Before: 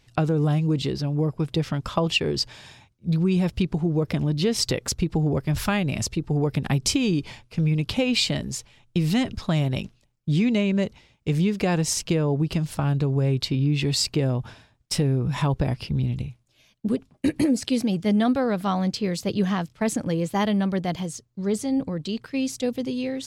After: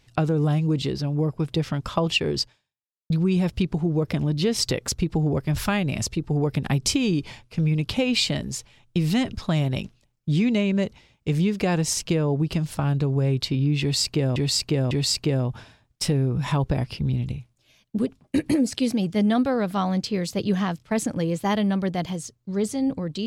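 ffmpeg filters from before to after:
-filter_complex "[0:a]asplit=4[a][b][c][d];[a]atrim=end=3.1,asetpts=PTS-STARTPTS,afade=t=out:st=2.41:d=0.69:c=exp[e];[b]atrim=start=3.1:end=14.362,asetpts=PTS-STARTPTS,afade=t=in:d=0.004:c=hsin[f];[c]atrim=start=13.808:end=14.362[g];[d]atrim=start=13.808[h];[e][f]concat=n=2:v=0:a=1[i];[i][g]acrossfade=d=0.004:c1=hsin:c2=hsin[j];[j][h]acrossfade=d=0.004:c1=hsin:c2=hsin"

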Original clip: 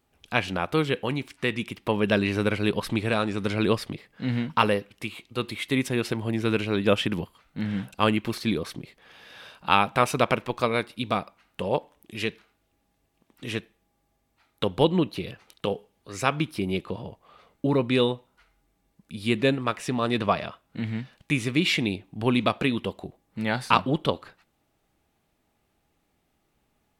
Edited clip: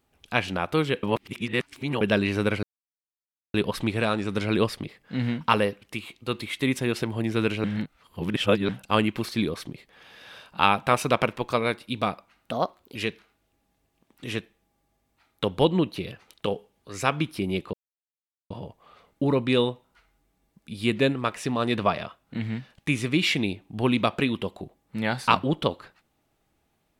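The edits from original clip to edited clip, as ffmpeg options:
-filter_complex "[0:a]asplit=9[a][b][c][d][e][f][g][h][i];[a]atrim=end=1.032[j];[b]atrim=start=1.028:end=2.012,asetpts=PTS-STARTPTS,areverse[k];[c]atrim=start=2.008:end=2.63,asetpts=PTS-STARTPTS,afade=t=out:st=0.618:d=0.004:c=hsin,apad=pad_dur=0.91[l];[d]atrim=start=2.63:end=6.732,asetpts=PTS-STARTPTS,afade=t=in:d=0.004:c=hsin[m];[e]atrim=start=6.728:end=7.782,asetpts=PTS-STARTPTS,areverse[n];[f]atrim=start=7.778:end=11.604[o];[g]atrim=start=11.6:end=12.15,asetpts=PTS-STARTPTS,asetrate=54684,aresample=44100,atrim=end_sample=19560,asetpts=PTS-STARTPTS[p];[h]atrim=start=12.146:end=16.93,asetpts=PTS-STARTPTS,afade=t=out:st=4.78:d=0.004:c=hsin,apad=pad_dur=0.77[q];[i]atrim=start=16.93,asetpts=PTS-STARTPTS,afade=t=in:d=0.004:c=hsin[r];[j][k]acrossfade=d=0.004:c1=hsin:c2=hsin[s];[l][m]concat=n=2:v=0:a=1[t];[s][t]acrossfade=d=0.004:c1=hsin:c2=hsin[u];[u][n]acrossfade=d=0.004:c1=hsin:c2=hsin[v];[v][o]acrossfade=d=0.004:c1=hsin:c2=hsin[w];[w][p]acrossfade=d=0.004:c1=hsin:c2=hsin[x];[q][r]concat=n=2:v=0:a=1[y];[x][y]acrossfade=d=0.004:c1=hsin:c2=hsin"

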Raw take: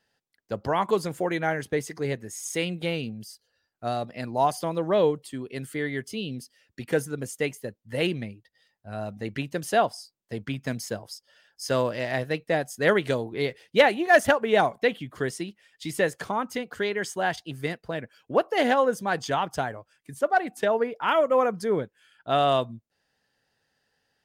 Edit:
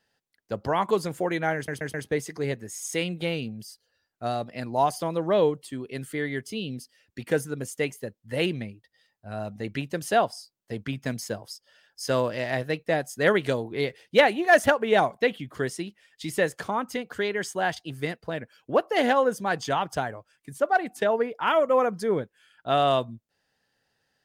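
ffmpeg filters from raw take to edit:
-filter_complex "[0:a]asplit=4[a][b][c][d];[a]atrim=end=1.682[e];[b]atrim=start=1.548:end=1.682[f];[c]atrim=start=1.548:end=1.682[g];[d]atrim=start=1.548[h];[e][f]acrossfade=d=0.004:c1=hsin:c2=hsin[i];[i][g]acrossfade=d=0.004:c1=hsin:c2=hsin[j];[j][h]acrossfade=d=0.004:c1=hsin:c2=hsin"

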